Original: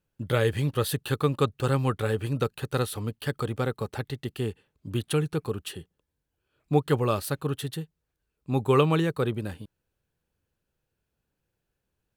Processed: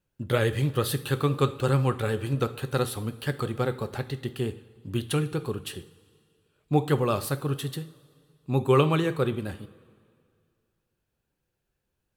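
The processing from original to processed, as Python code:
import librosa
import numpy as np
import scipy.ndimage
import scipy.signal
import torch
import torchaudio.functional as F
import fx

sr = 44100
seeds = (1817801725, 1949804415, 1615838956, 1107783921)

y = fx.rev_double_slope(x, sr, seeds[0], early_s=0.41, late_s=2.2, knee_db=-17, drr_db=9.0)
y = fx.vibrato(y, sr, rate_hz=11.0, depth_cents=38.0)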